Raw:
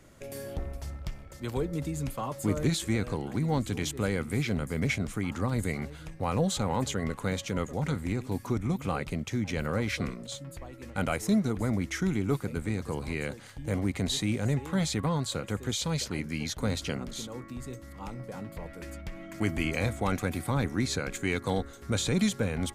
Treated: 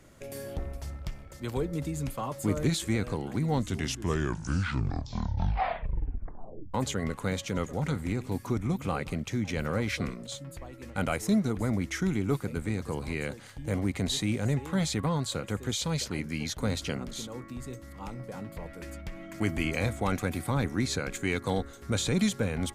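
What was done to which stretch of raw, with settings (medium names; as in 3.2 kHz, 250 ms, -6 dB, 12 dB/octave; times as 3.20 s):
3.46 s: tape stop 3.28 s
7.35–9.82 s: delay 175 ms -21.5 dB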